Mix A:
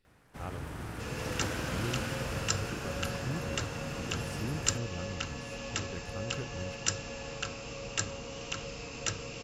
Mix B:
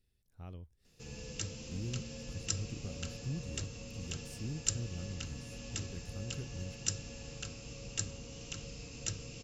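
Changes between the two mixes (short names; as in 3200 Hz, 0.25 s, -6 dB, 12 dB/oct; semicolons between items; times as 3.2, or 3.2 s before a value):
first sound: muted; master: add bell 1100 Hz -15 dB 3 oct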